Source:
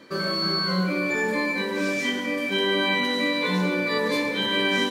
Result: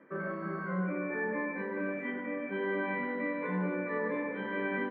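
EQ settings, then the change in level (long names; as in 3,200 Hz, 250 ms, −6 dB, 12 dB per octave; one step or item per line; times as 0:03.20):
elliptic band-pass filter 150–1,900 Hz, stop band 40 dB
−8.0 dB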